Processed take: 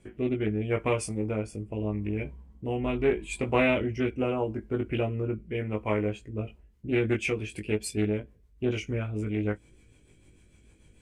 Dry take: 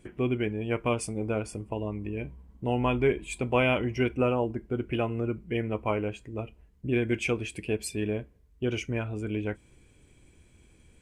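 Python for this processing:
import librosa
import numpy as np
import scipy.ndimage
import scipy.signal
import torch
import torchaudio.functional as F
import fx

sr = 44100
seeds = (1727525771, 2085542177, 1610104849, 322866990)

y = fx.rotary_switch(x, sr, hz=0.8, then_hz=6.7, switch_at_s=6.1)
y = fx.doubler(y, sr, ms=19.0, db=-3.5)
y = fx.doppler_dist(y, sr, depth_ms=0.18)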